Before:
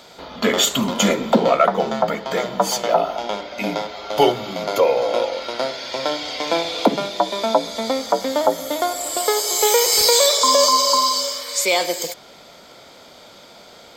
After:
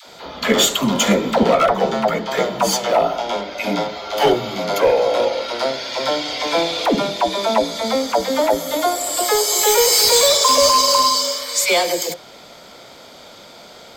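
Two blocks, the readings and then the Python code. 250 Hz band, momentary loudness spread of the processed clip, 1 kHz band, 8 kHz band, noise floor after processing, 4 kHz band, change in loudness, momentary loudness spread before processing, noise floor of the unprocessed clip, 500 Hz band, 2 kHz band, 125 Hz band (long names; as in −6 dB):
+2.0 dB, 11 LU, +1.5 dB, +2.0 dB, −42 dBFS, +2.0 dB, +2.0 dB, 12 LU, −45 dBFS, +2.0 dB, +2.5 dB, +2.5 dB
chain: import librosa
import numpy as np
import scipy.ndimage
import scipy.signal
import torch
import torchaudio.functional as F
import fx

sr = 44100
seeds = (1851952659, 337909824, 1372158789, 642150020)

p1 = 10.0 ** (-13.5 / 20.0) * (np.abs((x / 10.0 ** (-13.5 / 20.0) + 3.0) % 4.0 - 2.0) - 1.0)
p2 = x + (p1 * 10.0 ** (-4.5 / 20.0))
p3 = fx.dispersion(p2, sr, late='lows', ms=70.0, hz=500.0)
y = p3 * 10.0 ** (-1.0 / 20.0)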